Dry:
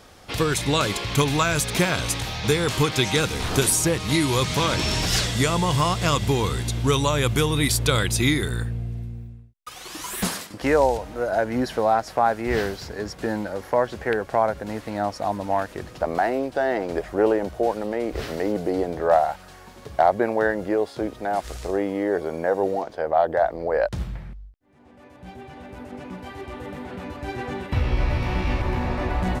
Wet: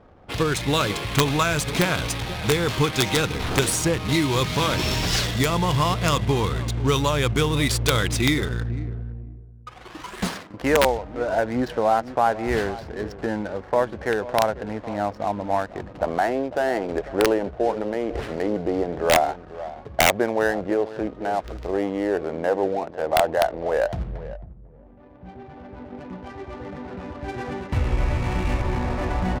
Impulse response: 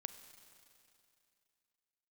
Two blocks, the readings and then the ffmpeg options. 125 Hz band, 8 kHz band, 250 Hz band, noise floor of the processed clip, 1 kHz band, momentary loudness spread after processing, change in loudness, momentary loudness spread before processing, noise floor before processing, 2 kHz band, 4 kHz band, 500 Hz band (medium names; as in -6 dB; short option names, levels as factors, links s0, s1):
0.0 dB, -2.5 dB, 0.0 dB, -44 dBFS, -0.5 dB, 15 LU, 0.0 dB, 15 LU, -46 dBFS, +1.0 dB, 0.0 dB, 0.0 dB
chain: -filter_complex "[0:a]asplit=2[s0][s1];[s1]adelay=496,lowpass=f=980:p=1,volume=0.2,asplit=2[s2][s3];[s3]adelay=496,lowpass=f=980:p=1,volume=0.16[s4];[s0][s2][s4]amix=inputs=3:normalize=0,adynamicsmooth=sensitivity=8:basefreq=730,aeval=exprs='(mod(2.66*val(0)+1,2)-1)/2.66':c=same"